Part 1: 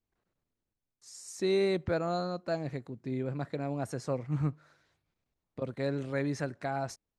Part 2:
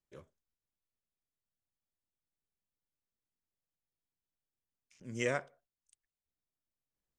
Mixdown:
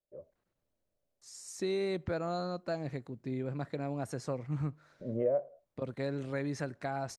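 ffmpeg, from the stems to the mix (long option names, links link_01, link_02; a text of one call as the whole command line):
ffmpeg -i stem1.wav -i stem2.wav -filter_complex "[0:a]adelay=200,volume=-1dB[link_01];[1:a]lowpass=frequency=590:width_type=q:width=7.3,dynaudnorm=framelen=350:gausssize=3:maxgain=13.5dB,volume=-6.5dB[link_02];[link_01][link_02]amix=inputs=2:normalize=0,acompressor=threshold=-31dB:ratio=3" out.wav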